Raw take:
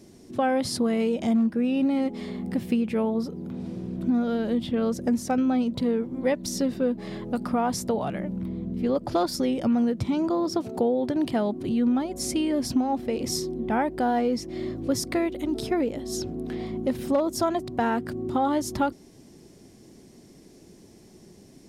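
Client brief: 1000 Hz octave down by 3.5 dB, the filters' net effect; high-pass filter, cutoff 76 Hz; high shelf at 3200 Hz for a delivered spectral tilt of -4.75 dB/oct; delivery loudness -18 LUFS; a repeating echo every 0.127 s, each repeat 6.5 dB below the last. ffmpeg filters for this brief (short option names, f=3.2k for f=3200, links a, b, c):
-af "highpass=76,equalizer=f=1k:t=o:g=-5.5,highshelf=f=3.2k:g=3.5,aecho=1:1:127|254|381|508|635|762:0.473|0.222|0.105|0.0491|0.0231|0.0109,volume=7.5dB"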